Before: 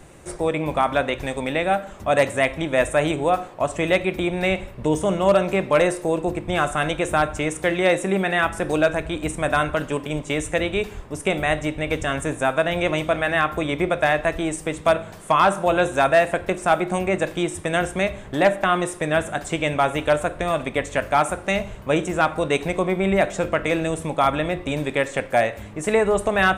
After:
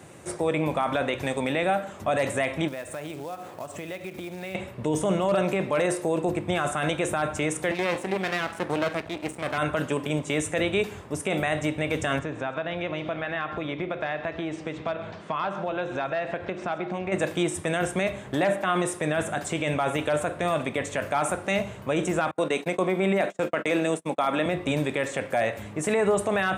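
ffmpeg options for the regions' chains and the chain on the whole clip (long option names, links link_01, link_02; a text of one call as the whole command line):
ffmpeg -i in.wav -filter_complex "[0:a]asettb=1/sr,asplit=3[link_01][link_02][link_03];[link_01]atrim=end=2.684[link_04];[link_02]atrim=start=2.68:end=4.55,asetpts=PTS-STARTPTS,afade=type=in:duration=0.004:curve=qsin,afade=type=out:start_time=1.866:duration=0.004:curve=qsin,acompressor=threshold=-34dB:ratio=5:attack=3.2:release=140:knee=1:detection=peak,acrusher=bits=4:mode=log:mix=0:aa=0.000001[link_05];[link_03]atrim=start=4.546[link_06];[link_04][link_05]acrossfade=duration=0.004:curve1=hsin:curve2=qsin[link_07];[link_07][link_06]acrossfade=duration=0.004:curve1=qsin:curve2=hsin,asettb=1/sr,asplit=3[link_08][link_09][link_10];[link_08]atrim=end=7.714[link_11];[link_09]atrim=start=7.71:end=9.58,asetpts=PTS-STARTPTS,afade=type=in:duration=0.004:curve=qsin,afade=type=out:start_time=1.866:duration=0.004:curve=qsin,bass=frequency=250:gain=-5,treble=frequency=4000:gain=-8,aeval=exprs='max(val(0),0)':channel_layout=same[link_12];[link_10]atrim=start=9.576[link_13];[link_11][link_12]acrossfade=duration=0.004:curve1=hsin:curve2=qsin[link_14];[link_14][link_13]acrossfade=duration=0.004:curve1=qsin:curve2=hsin,asettb=1/sr,asplit=3[link_15][link_16][link_17];[link_15]atrim=end=12.194[link_18];[link_16]atrim=start=12.19:end=17.12,asetpts=PTS-STARTPTS,afade=type=in:duration=0.004:curve=qsin,afade=type=out:start_time=4.926:duration=0.004:curve=qsin,lowpass=frequency=4800:width=0.5412,lowpass=frequency=4800:width=1.3066,acompressor=threshold=-29dB:ratio=3:attack=3.2:release=140:knee=1:detection=peak,aecho=1:1:132:0.188,atrim=end_sample=217413[link_19];[link_17]atrim=start=17.116[link_20];[link_18][link_19]acrossfade=duration=0.004:curve1=hsin:curve2=qsin[link_21];[link_21][link_20]acrossfade=duration=0.004:curve1=qsin:curve2=hsin,asettb=1/sr,asplit=3[link_22][link_23][link_24];[link_22]atrim=end=22.314[link_25];[link_23]atrim=start=22.31:end=24.46,asetpts=PTS-STARTPTS,afade=type=in:duration=0.004:curve=qsin,afade=type=out:start_time=2.146:duration=0.004:curve=qsin,highpass=frequency=180:width=0.5412,highpass=frequency=180:width=1.3066,agate=range=-37dB:threshold=-30dB:ratio=16:release=100:detection=peak[link_26];[link_24]atrim=start=24.456[link_27];[link_25][link_26]acrossfade=duration=0.004:curve1=hsin:curve2=qsin[link_28];[link_28][link_27]acrossfade=duration=0.004:curve1=qsin:curve2=hsin,highpass=frequency=87:width=0.5412,highpass=frequency=87:width=1.3066,alimiter=limit=-15dB:level=0:latency=1:release=19" out.wav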